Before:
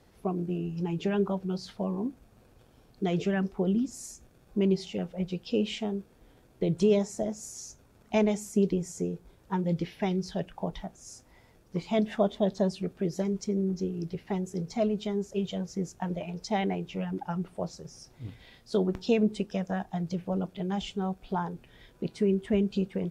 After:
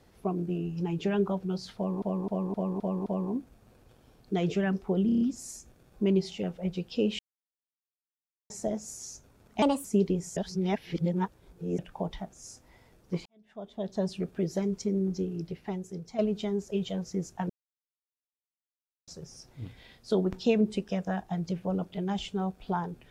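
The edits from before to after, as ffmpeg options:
-filter_complex "[0:a]asplit=21[a][b][c][d][e][f][g][h][i][j][k][l][m][n][o][p][q][r][s][t][u];[a]atrim=end=2.022[v];[b]atrim=start=1.758:end=2.022[w];[c]atrim=start=1.758:end=2.022[x];[d]atrim=start=1.758:end=2.022[y];[e]atrim=start=1.758:end=2.022[z];[f]atrim=start=1.758:end=3.792[aa];[g]atrim=start=3.758:end=3.792[ab];[h]atrim=start=3.758:end=3.792[ac];[i]atrim=start=3.758:end=3.792[ad];[j]atrim=start=3.758:end=3.792[ae];[k]atrim=start=3.758:end=5.74,asetpts=PTS-STARTPTS,afade=t=out:st=1.978:d=0.004:c=hsin[af];[l]atrim=start=5.74:end=7.05,asetpts=PTS-STARTPTS,volume=0[ag];[m]atrim=start=7.05:end=8.174,asetpts=PTS-STARTPTS,afade=t=in:d=0.004:c=hsin[ah];[n]atrim=start=8.17:end=8.47,asetpts=PTS-STARTPTS,asetrate=58653,aresample=44100,atrim=end_sample=9947,asetpts=PTS-STARTPTS[ai];[o]atrim=start=8.466:end=8.992[aj];[p]atrim=start=8.988:end=10.412,asetpts=PTS-STARTPTS,areverse[ak];[q]atrim=start=10.408:end=11.88,asetpts=PTS-STARTPTS,afade=t=out:st=1.468:d=0.004:c=hsin[al];[r]atrim=start=11.88:end=14.81,asetpts=PTS-STARTPTS,afade=t=in:d=0.9:c=qua,afade=t=out:st=1.96:d=0.97:silence=0.354813[am];[s]atrim=start=14.81:end=16.12,asetpts=PTS-STARTPTS,afade=t=in:d=0.004:c=hsin:silence=0.354813,afade=t=out:st=1.306:d=0.004:c=hsin[an];[t]atrim=start=16.12:end=17.7,asetpts=PTS-STARTPTS,volume=0[ao];[u]atrim=start=17.7,asetpts=PTS-STARTPTS,afade=t=in:d=0.004:c=hsin[ap];[v][w]acrossfade=d=0.004:c1=hsin:c2=hsin[aq];[aq][x]acrossfade=d=0.004:c1=hsin:c2=hsin[ar];[ar][y]acrossfade=d=0.004:c1=hsin:c2=hsin[as];[as][z]acrossfade=d=0.004:c1=hsin:c2=hsin[at];[at][aa]acrossfade=d=0.004:c1=hsin:c2=hsin[au];[au][ab]acrossfade=d=0.004:c1=hsin:c2=hsin[av];[av][ac]acrossfade=d=0.004:c1=hsin:c2=hsin[aw];[aw][ad]acrossfade=d=0.004:c1=hsin:c2=hsin[ax];[ax][ae]acrossfade=d=0.004:c1=hsin:c2=hsin[ay];[af][ag][ah]concat=n=3:v=0:a=1[az];[ay][az]acrossfade=d=0.004:c1=hsin:c2=hsin[ba];[ba][ai]acrossfade=d=0.004:c1=hsin:c2=hsin[bb];[bb][aj]acrossfade=d=0.004:c1=hsin:c2=hsin[bc];[bc][ak]acrossfade=d=0.004:c1=hsin:c2=hsin[bd];[al][am][an][ao][ap]concat=n=5:v=0:a=1[be];[bd][be]acrossfade=d=0.004:c1=hsin:c2=hsin"

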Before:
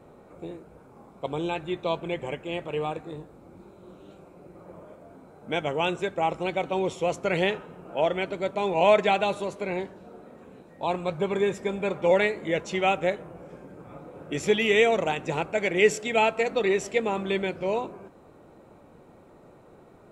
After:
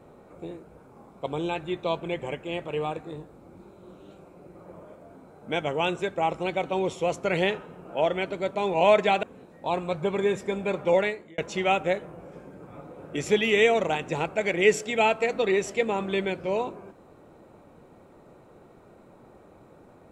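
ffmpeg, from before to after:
-filter_complex "[0:a]asplit=3[a][b][c];[a]atrim=end=9.232[d];[b]atrim=start=10.398:end=12.55,asetpts=PTS-STARTPTS,afade=t=out:st=1.672:d=0.48[e];[c]atrim=start=12.55,asetpts=PTS-STARTPTS,afade=t=in:d=0.004:c=hsin[f];[e][f]concat=n=2:v=0:a=1[g];[d][g]acrossfade=d=0.004:c1=hsin:c2=hsin"

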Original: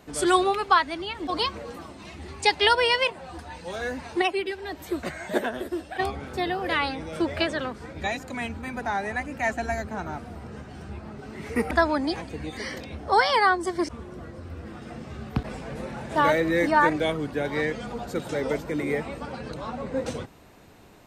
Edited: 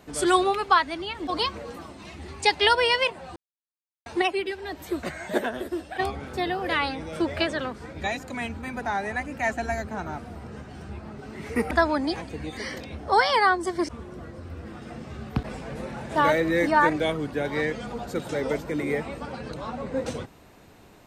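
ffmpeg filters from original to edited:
-filter_complex "[0:a]asplit=3[a][b][c];[a]atrim=end=3.36,asetpts=PTS-STARTPTS,afade=t=out:st=3.356:d=0.004:c=hsin[d];[b]atrim=start=3.36:end=4.06,asetpts=PTS-STARTPTS,volume=0[e];[c]atrim=start=4.06,asetpts=PTS-STARTPTS,afade=t=in:d=0.004:c=hsin[f];[d][e][f]concat=n=3:v=0:a=1"

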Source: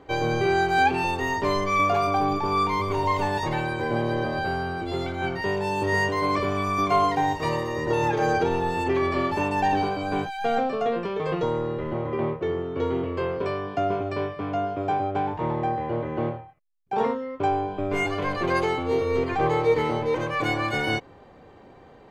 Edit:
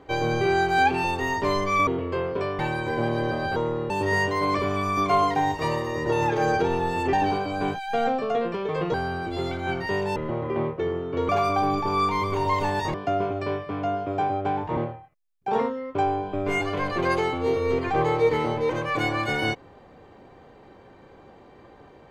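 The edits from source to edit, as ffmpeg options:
-filter_complex "[0:a]asplit=11[a][b][c][d][e][f][g][h][i][j][k];[a]atrim=end=1.872[l];[b]atrim=start=12.918:end=13.642[m];[c]atrim=start=3.518:end=4.492[n];[d]atrim=start=11.448:end=11.792[o];[e]atrim=start=5.708:end=8.942[p];[f]atrim=start=9.638:end=11.452[q];[g]atrim=start=4.488:end=5.712[r];[h]atrim=start=11.788:end=12.922[s];[i]atrim=start=1.868:end=3.522[t];[j]atrim=start=13.638:end=15.472[u];[k]atrim=start=16.218[v];[l][m]acrossfade=d=0.004:c1=hsin:c2=hsin[w];[w][n]acrossfade=d=0.004:c1=hsin:c2=hsin[x];[x][o]acrossfade=d=0.004:c1=hsin:c2=hsin[y];[y][p]acrossfade=d=0.004:c1=hsin:c2=hsin[z];[z][q]acrossfade=d=0.004:c1=hsin:c2=hsin[aa];[aa][r]acrossfade=d=0.004:c1=hsin:c2=hsin[ab];[ab][s]acrossfade=d=0.004:c1=hsin:c2=hsin[ac];[ac][t]acrossfade=d=0.004:c1=hsin:c2=hsin[ad];[ad][u]acrossfade=d=0.004:c1=hsin:c2=hsin[ae];[ae][v]acrossfade=d=0.004:c1=hsin:c2=hsin"

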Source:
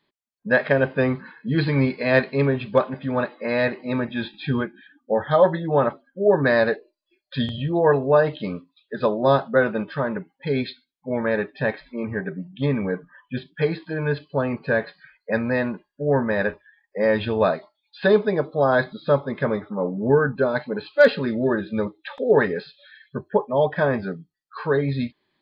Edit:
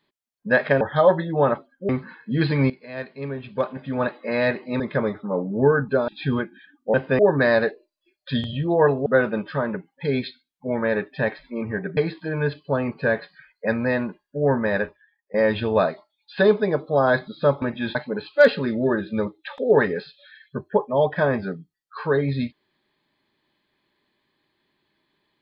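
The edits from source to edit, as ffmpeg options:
-filter_complex "[0:a]asplit=13[a][b][c][d][e][f][g][h][i][j][k][l][m];[a]atrim=end=0.812[n];[b]atrim=start=5.158:end=6.242[o];[c]atrim=start=1.058:end=1.87,asetpts=PTS-STARTPTS,afade=t=out:st=0.808:d=0.004:c=hsin:silence=0.149624[p];[d]atrim=start=1.87:end=3.972,asetpts=PTS-STARTPTS,afade=t=in:d=1.36:c=qua:silence=0.149624[q];[e]atrim=start=19.268:end=20.552[r];[f]atrim=start=4.298:end=5.162[s];[g]atrim=start=0.808:end=1.062[t];[h]atrim=start=6.238:end=8.112[u];[i]atrim=start=9.478:end=12.392[v];[j]atrim=start=13.618:end=16.99,asetpts=PTS-STARTPTS,afade=t=out:st=2.772:d=0.6:silence=0.112202[w];[k]atrim=start=16.99:end=19.272,asetpts=PTS-STARTPTS,afade=t=in:d=0.004:c=hsin:silence=0.112202[x];[l]atrim=start=3.968:end=4.302[y];[m]atrim=start=20.548[z];[n][o]acrossfade=d=0.004:c1=hsin:c2=hsin[aa];[p][q]concat=n=2:v=0:a=1[ab];[aa][ab]acrossfade=d=0.004:c1=hsin:c2=hsin[ac];[ac][r]acrossfade=d=0.004:c1=hsin:c2=hsin[ad];[ad][s]acrossfade=d=0.004:c1=hsin:c2=hsin[ae];[ae][t]acrossfade=d=0.004:c1=hsin:c2=hsin[af];[af][u]acrossfade=d=0.004:c1=hsin:c2=hsin[ag];[ag][v]acrossfade=d=0.004:c1=hsin:c2=hsin[ah];[w][x]concat=n=2:v=0:a=1[ai];[ah][ai]acrossfade=d=0.004:c1=hsin:c2=hsin[aj];[aj][y]acrossfade=d=0.004:c1=hsin:c2=hsin[ak];[ak][z]acrossfade=d=0.004:c1=hsin:c2=hsin"

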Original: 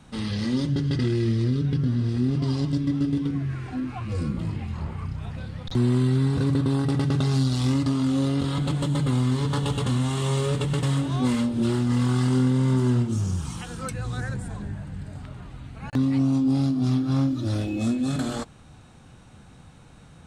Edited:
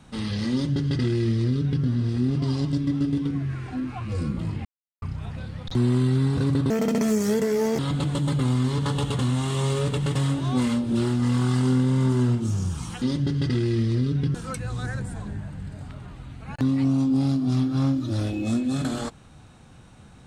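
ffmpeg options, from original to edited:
-filter_complex "[0:a]asplit=7[a][b][c][d][e][f][g];[a]atrim=end=4.65,asetpts=PTS-STARTPTS,afade=t=out:st=4.646:d=0.004:c=hsin[h];[b]atrim=start=4.65:end=5.02,asetpts=PTS-STARTPTS,volume=0[i];[c]atrim=start=5.02:end=6.704,asetpts=PTS-STARTPTS,afade=t=in:d=0.004:c=hsin[j];[d]atrim=start=6.7:end=8.46,asetpts=PTS-STARTPTS,asetrate=71442,aresample=44100,atrim=end_sample=47911,asetpts=PTS-STARTPTS[k];[e]atrim=start=8.456:end=13.692[l];[f]atrim=start=0.508:end=1.842[m];[g]atrim=start=13.688[n];[h][i][j]concat=n=3:v=0:a=1[o];[o][k]acrossfade=d=0.004:c1=hsin:c2=hsin[p];[p][l]acrossfade=d=0.004:c1=hsin:c2=hsin[q];[q][m]acrossfade=d=0.004:c1=hsin:c2=hsin[r];[r][n]acrossfade=d=0.004:c1=hsin:c2=hsin"

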